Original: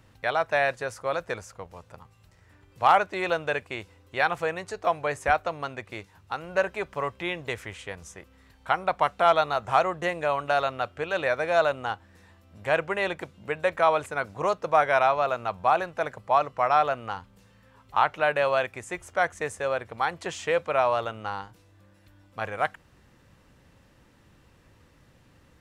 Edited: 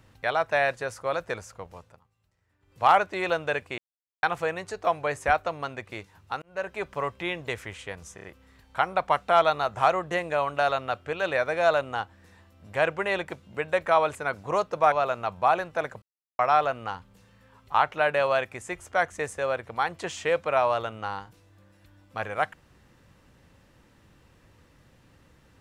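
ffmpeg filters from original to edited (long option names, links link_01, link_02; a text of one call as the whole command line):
ffmpeg -i in.wav -filter_complex "[0:a]asplit=12[link_01][link_02][link_03][link_04][link_05][link_06][link_07][link_08][link_09][link_10][link_11][link_12];[link_01]atrim=end=2.01,asetpts=PTS-STARTPTS,afade=type=out:start_time=1.76:duration=0.25:silence=0.16788[link_13];[link_02]atrim=start=2.01:end=2.59,asetpts=PTS-STARTPTS,volume=-15.5dB[link_14];[link_03]atrim=start=2.59:end=3.78,asetpts=PTS-STARTPTS,afade=type=in:duration=0.25:silence=0.16788,afade=type=out:start_time=1.186:duration=0.004:curve=hsin[link_15];[link_04]atrim=start=3.78:end=4.23,asetpts=PTS-STARTPTS,volume=0[link_16];[link_05]atrim=start=4.23:end=6.42,asetpts=PTS-STARTPTS,afade=type=in:duration=0.004:curve=hsin,afade=type=out:start_time=2.186:duration=0.004:curve=hsin[link_17];[link_06]atrim=start=6.42:end=8.182,asetpts=PTS-STARTPTS,afade=type=in:duration=0.43[link_18];[link_07]atrim=start=8.148:end=8.182[link_19];[link_08]atrim=start=8.148:end=8.182[link_20];[link_09]atrim=start=8.148:end=14.832[link_21];[link_10]atrim=start=15.138:end=16.24,asetpts=PTS-STARTPTS,afade=type=out:start_time=1.098:duration=0.004:curve=hsin[link_22];[link_11]atrim=start=16.24:end=16.61,asetpts=PTS-STARTPTS,volume=0[link_23];[link_12]atrim=start=16.61,asetpts=PTS-STARTPTS,afade=type=in:duration=0.004:curve=hsin[link_24];[link_13][link_14][link_15][link_16][link_17][link_18]concat=n=6:v=0:a=1[link_25];[link_25][link_19]acrossfade=duration=0.004:curve1=hsin:curve2=hsin[link_26];[link_26][link_20]acrossfade=duration=0.004:curve1=hsin:curve2=hsin[link_27];[link_27][link_21]acrossfade=duration=0.004:curve1=hsin:curve2=hsin[link_28];[link_22][link_23][link_24]concat=n=3:v=0:a=1[link_29];[link_28][link_29]acrossfade=duration=0.004:curve1=hsin:curve2=hsin" out.wav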